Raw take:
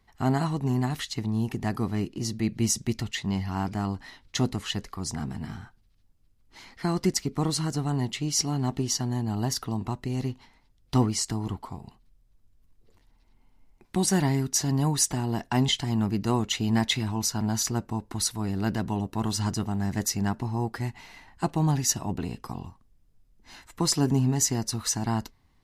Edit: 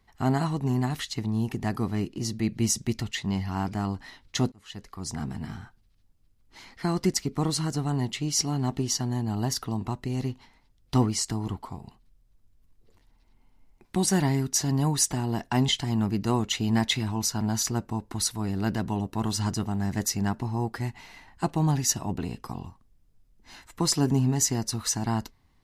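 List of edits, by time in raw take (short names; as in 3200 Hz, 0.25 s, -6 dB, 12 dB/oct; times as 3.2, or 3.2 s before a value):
4.52–5.22 fade in linear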